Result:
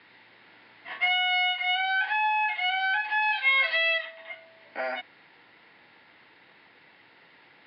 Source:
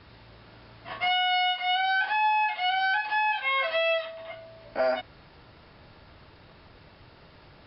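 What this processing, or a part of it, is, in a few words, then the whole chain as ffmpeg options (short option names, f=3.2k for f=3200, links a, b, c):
phone earpiece: -filter_complex "[0:a]highpass=58,highpass=350,equalizer=f=400:t=q:w=4:g=-5,equalizer=f=610:t=q:w=4:g=-10,equalizer=f=1.2k:t=q:w=4:g=-7,equalizer=f=2k:t=q:w=4:g=8,lowpass=f=3.9k:w=0.5412,lowpass=f=3.9k:w=1.3066,asettb=1/sr,asplit=3[a][b][c];[a]atrim=end=3.224[d];[b]atrim=start=3.22:end=3.98,asetpts=PTS-STARTPTS,afade=t=in:d=0.004:c=qsin,afade=t=out:st=0.756:d=0.004:c=qsin,equalizer=f=4.4k:t=o:w=0.58:g=11[e];[c]atrim=start=3.976[f];[d][e]acrossfade=d=0.004:c1=hsin:c2=qsin[g];[g][f]acrossfade=d=0.004:c1=qsin:c2=hsin"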